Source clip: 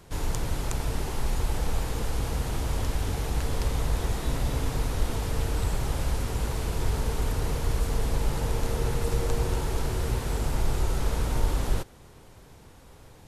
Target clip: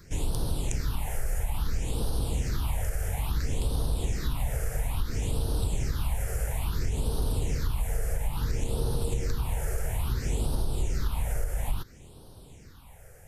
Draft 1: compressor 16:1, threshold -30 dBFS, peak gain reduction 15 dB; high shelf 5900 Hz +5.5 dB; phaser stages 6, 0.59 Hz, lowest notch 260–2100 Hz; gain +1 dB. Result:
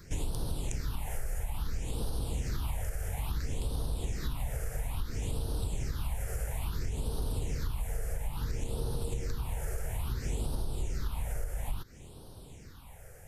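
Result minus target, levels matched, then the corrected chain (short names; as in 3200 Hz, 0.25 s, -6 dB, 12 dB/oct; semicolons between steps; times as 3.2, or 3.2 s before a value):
compressor: peak gain reduction +5.5 dB
compressor 16:1, threshold -24 dBFS, peak gain reduction 9.5 dB; high shelf 5900 Hz +5.5 dB; phaser stages 6, 0.59 Hz, lowest notch 260–2100 Hz; gain +1 dB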